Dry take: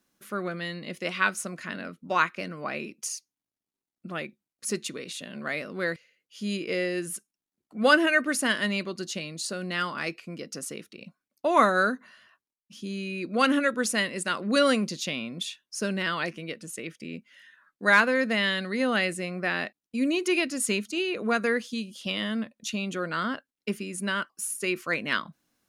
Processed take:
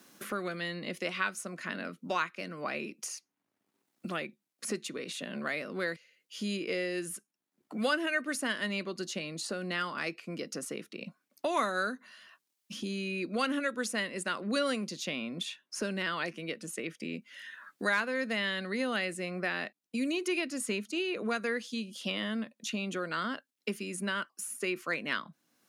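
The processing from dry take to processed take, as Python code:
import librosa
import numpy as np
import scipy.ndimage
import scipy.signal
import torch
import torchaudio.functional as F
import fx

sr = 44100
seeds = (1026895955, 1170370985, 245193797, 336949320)

y = fx.high_shelf(x, sr, hz=9200.0, db=-6.5, at=(21.43, 21.93))
y = scipy.signal.sosfilt(scipy.signal.butter(2, 160.0, 'highpass', fs=sr, output='sos'), y)
y = fx.band_squash(y, sr, depth_pct=70)
y = F.gain(torch.from_numpy(y), -5.5).numpy()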